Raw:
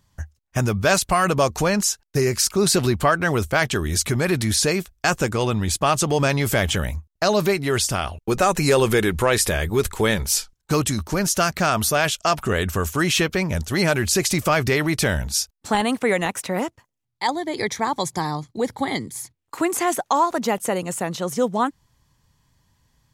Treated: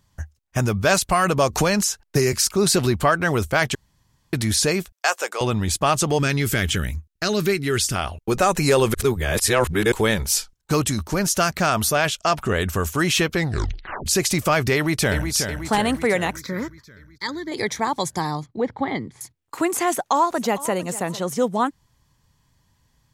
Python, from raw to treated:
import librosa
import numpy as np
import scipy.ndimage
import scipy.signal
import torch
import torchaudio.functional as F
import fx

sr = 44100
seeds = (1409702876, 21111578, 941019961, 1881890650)

y = fx.band_squash(x, sr, depth_pct=70, at=(1.53, 2.33))
y = fx.highpass(y, sr, hz=510.0, slope=24, at=(4.92, 5.41))
y = fx.band_shelf(y, sr, hz=750.0, db=-10.0, octaves=1.3, at=(6.19, 7.96))
y = fx.high_shelf(y, sr, hz=7900.0, db=-6.0, at=(11.93, 12.6))
y = fx.echo_throw(y, sr, start_s=14.74, length_s=0.58, ms=370, feedback_pct=60, wet_db=-7.0)
y = fx.fixed_phaser(y, sr, hz=2800.0, stages=6, at=(16.36, 17.52))
y = fx.lowpass(y, sr, hz=2400.0, slope=12, at=(18.46, 19.21))
y = fx.echo_throw(y, sr, start_s=19.91, length_s=0.86, ms=450, feedback_pct=25, wet_db=-17.0)
y = fx.edit(y, sr, fx.room_tone_fill(start_s=3.75, length_s=0.58),
    fx.reverse_span(start_s=8.94, length_s=0.98),
    fx.tape_stop(start_s=13.33, length_s=0.73), tone=tone)